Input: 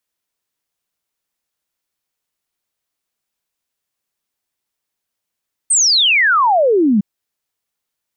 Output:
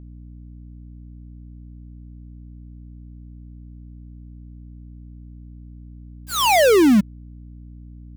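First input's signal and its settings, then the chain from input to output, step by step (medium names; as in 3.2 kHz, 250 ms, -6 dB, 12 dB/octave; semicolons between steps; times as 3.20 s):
log sweep 8.9 kHz -> 190 Hz 1.31 s -9.5 dBFS
dead-time distortion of 0.29 ms; hum 60 Hz, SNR 15 dB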